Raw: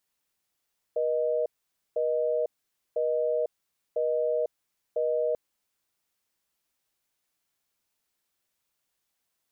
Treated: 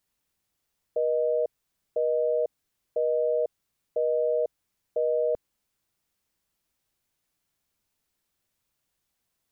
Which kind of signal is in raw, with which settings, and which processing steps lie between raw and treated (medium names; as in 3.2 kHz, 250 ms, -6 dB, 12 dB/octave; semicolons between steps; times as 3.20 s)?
call progress tone busy tone, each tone -26.5 dBFS 4.39 s
bass shelf 240 Hz +10 dB